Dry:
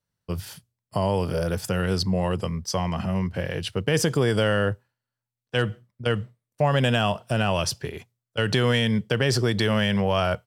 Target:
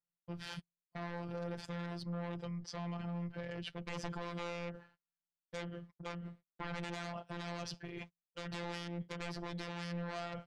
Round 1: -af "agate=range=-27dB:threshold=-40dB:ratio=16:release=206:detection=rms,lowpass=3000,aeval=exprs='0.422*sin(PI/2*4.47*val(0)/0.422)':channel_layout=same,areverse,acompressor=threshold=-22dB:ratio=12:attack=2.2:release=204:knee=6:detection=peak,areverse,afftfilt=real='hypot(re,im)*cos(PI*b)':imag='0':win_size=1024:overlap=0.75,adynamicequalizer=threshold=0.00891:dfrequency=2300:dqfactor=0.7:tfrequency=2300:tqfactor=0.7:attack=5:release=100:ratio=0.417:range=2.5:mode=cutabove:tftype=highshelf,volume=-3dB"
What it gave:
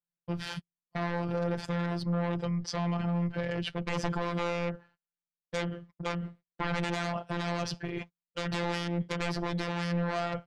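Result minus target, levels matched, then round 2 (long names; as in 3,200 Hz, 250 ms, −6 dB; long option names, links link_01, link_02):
downward compressor: peak gain reduction −10.5 dB
-af "agate=range=-27dB:threshold=-40dB:ratio=16:release=206:detection=rms,lowpass=3000,aeval=exprs='0.422*sin(PI/2*4.47*val(0)/0.422)':channel_layout=same,areverse,acompressor=threshold=-33.5dB:ratio=12:attack=2.2:release=204:knee=6:detection=peak,areverse,afftfilt=real='hypot(re,im)*cos(PI*b)':imag='0':win_size=1024:overlap=0.75,adynamicequalizer=threshold=0.00891:dfrequency=2300:dqfactor=0.7:tfrequency=2300:tqfactor=0.7:attack=5:release=100:ratio=0.417:range=2.5:mode=cutabove:tftype=highshelf,volume=-3dB"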